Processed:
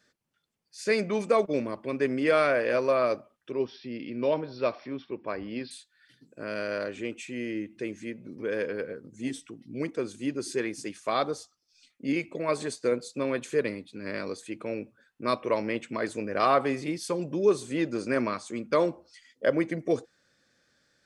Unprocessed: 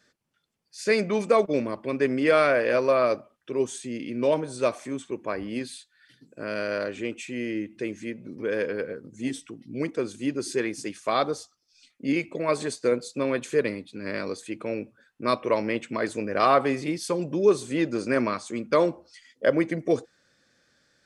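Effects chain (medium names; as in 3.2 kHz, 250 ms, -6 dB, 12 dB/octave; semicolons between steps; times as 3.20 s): 3.52–5.71 s: Chebyshev low-pass 5.6 kHz, order 10; trim -3 dB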